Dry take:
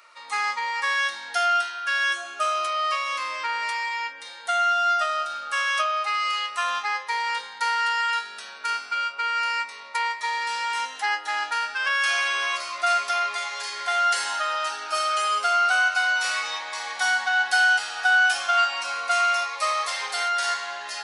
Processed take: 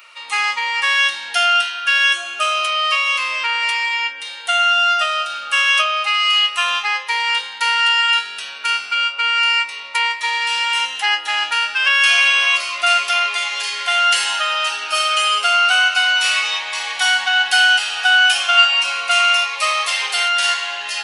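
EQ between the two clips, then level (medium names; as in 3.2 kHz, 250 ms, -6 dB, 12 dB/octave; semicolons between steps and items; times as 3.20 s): peaking EQ 2.8 kHz +13.5 dB 0.63 oct; treble shelf 9.4 kHz +12 dB; +3.0 dB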